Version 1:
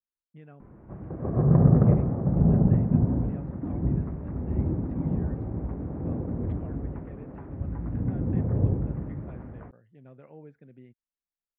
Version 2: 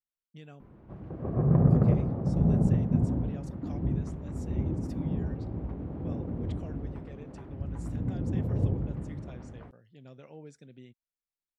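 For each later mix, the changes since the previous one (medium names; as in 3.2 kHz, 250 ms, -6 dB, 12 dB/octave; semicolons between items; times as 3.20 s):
background -3.5 dB; master: remove low-pass 2.1 kHz 24 dB/octave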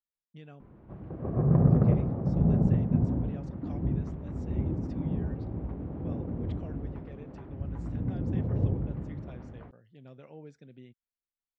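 master: add Gaussian low-pass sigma 1.7 samples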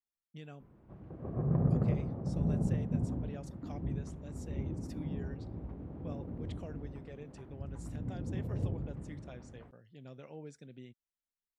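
background -7.5 dB; master: remove Gaussian low-pass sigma 1.7 samples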